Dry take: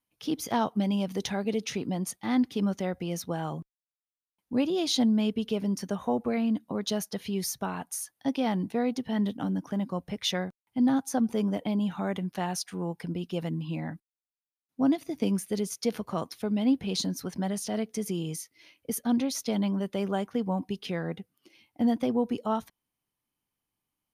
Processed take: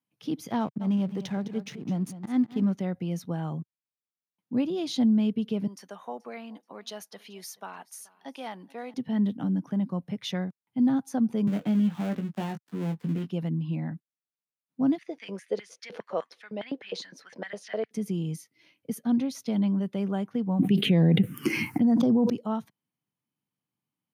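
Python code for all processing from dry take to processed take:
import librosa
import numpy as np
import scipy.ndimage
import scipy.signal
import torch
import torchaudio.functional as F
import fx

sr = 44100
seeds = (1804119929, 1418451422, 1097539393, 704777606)

y = fx.chain(x, sr, fx.backlash(play_db=-38.0),
    fx.auto_swell(attack_ms=104.0),
    fx.echo_single(ms=208, db=-13.0), at=(0.6, 2.72))
y = fx.chain(y, sr, fx.highpass(hz=650.0, slope=12),
    fx.echo_feedback(ms=429, feedback_pct=30, wet_db=-22.5), at=(5.67, 8.94))
y = fx.chain(y, sr, fx.dead_time(dead_ms=0.24),
    fx.doubler(ms=19.0, db=-6.0),
    fx.band_squash(depth_pct=40), at=(11.47, 13.3))
y = fx.chain(y, sr, fx.lowpass(hz=5900.0, slope=12),
    fx.filter_lfo_highpass(shape='square', hz=4.9, low_hz=500.0, high_hz=1800.0, q=5.1), at=(14.98, 17.91))
y = fx.chain(y, sr, fx.env_phaser(low_hz=590.0, high_hz=3200.0, full_db=-21.5),
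    fx.env_flatten(amount_pct=100), at=(20.59, 22.3))
y = scipy.signal.sosfilt(scipy.signal.butter(4, 130.0, 'highpass', fs=sr, output='sos'), y)
y = fx.bass_treble(y, sr, bass_db=11, treble_db=-5)
y = F.gain(torch.from_numpy(y), -4.5).numpy()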